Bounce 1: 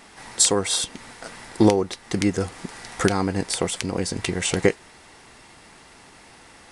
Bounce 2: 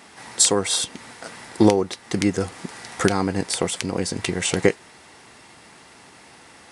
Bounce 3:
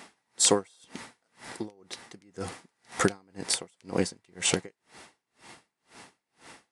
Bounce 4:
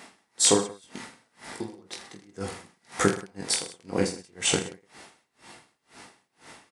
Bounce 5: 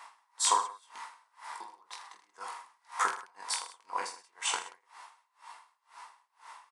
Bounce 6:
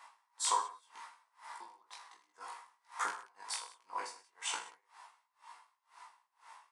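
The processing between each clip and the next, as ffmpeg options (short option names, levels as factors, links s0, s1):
-af "highpass=86,volume=1.12"
-af "equalizer=f=78:t=o:w=0.79:g=-6.5,aeval=exprs='val(0)*pow(10,-39*(0.5-0.5*cos(2*PI*2*n/s))/20)':c=same"
-af "aecho=1:1:20|46|79.8|123.7|180.9:0.631|0.398|0.251|0.158|0.1"
-af "highpass=f=1000:t=q:w=8.3,volume=0.398"
-af "flanger=delay=16.5:depth=2.3:speed=1.3,volume=0.708"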